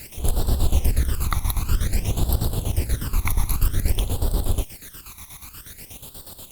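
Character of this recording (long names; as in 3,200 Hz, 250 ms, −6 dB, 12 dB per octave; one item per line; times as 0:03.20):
a quantiser's noise floor 6 bits, dither triangular
phaser sweep stages 12, 0.52 Hz, lowest notch 500–2,200 Hz
chopped level 8.3 Hz, depth 65%, duty 55%
Opus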